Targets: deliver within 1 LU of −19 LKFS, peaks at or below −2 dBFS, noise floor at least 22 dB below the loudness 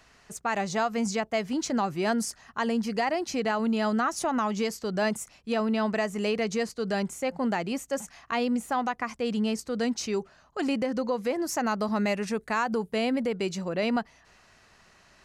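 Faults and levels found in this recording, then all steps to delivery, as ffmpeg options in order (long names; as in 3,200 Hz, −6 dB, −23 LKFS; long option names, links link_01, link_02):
integrated loudness −29.0 LKFS; sample peak −15.5 dBFS; target loudness −19.0 LKFS
→ -af "volume=10dB"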